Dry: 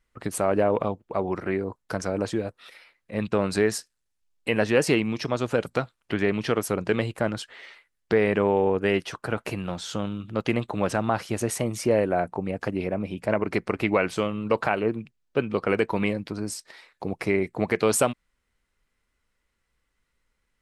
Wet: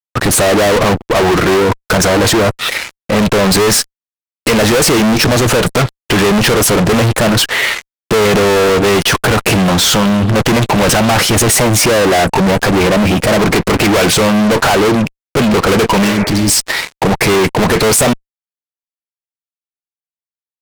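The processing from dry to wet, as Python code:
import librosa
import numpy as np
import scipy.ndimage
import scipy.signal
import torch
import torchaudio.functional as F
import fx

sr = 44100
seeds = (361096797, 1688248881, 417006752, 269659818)

y = fx.fuzz(x, sr, gain_db=45.0, gate_db=-54.0)
y = fx.spec_repair(y, sr, seeds[0], start_s=16.07, length_s=0.39, low_hz=360.0, high_hz=2600.0, source='both')
y = F.gain(torch.from_numpy(y), 4.0).numpy()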